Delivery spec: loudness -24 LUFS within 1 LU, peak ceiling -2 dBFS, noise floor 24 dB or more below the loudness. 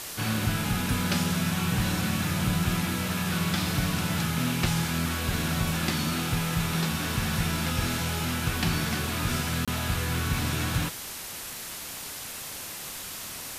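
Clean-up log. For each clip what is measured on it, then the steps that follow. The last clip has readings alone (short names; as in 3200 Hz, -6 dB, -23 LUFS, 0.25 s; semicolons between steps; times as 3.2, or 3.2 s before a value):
dropouts 1; longest dropout 26 ms; noise floor -38 dBFS; noise floor target -52 dBFS; loudness -28.0 LUFS; peak -13.0 dBFS; loudness target -24.0 LUFS
-> interpolate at 9.65, 26 ms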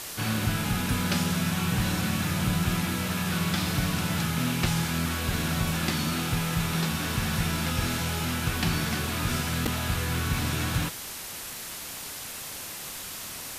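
dropouts 0; noise floor -38 dBFS; noise floor target -52 dBFS
-> denoiser 14 dB, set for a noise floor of -38 dBFS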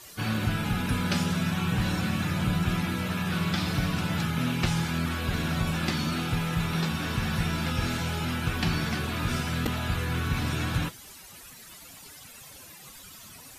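noise floor -48 dBFS; noise floor target -53 dBFS
-> denoiser 6 dB, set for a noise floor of -48 dBFS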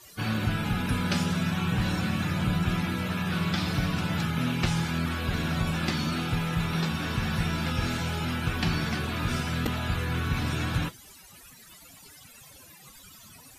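noise floor -51 dBFS; noise floor target -53 dBFS
-> denoiser 6 dB, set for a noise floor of -51 dBFS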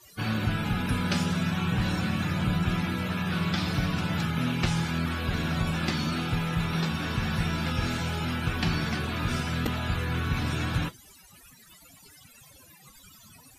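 noise floor -54 dBFS; loudness -28.5 LUFS; peak -13.0 dBFS; loudness target -24.0 LUFS
-> gain +4.5 dB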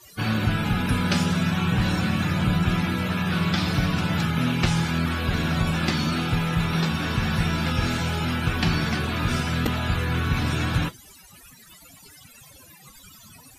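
loudness -24.0 LUFS; peak -8.5 dBFS; noise floor -49 dBFS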